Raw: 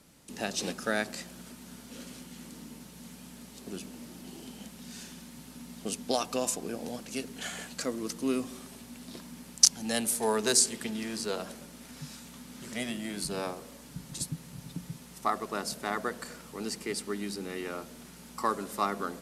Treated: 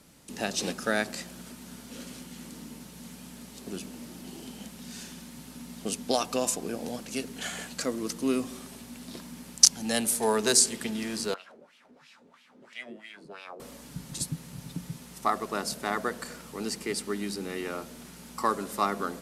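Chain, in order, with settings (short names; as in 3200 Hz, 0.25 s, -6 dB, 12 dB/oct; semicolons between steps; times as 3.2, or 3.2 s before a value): 11.34–13.6 wah 3 Hz 390–2900 Hz, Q 3; gain +2.5 dB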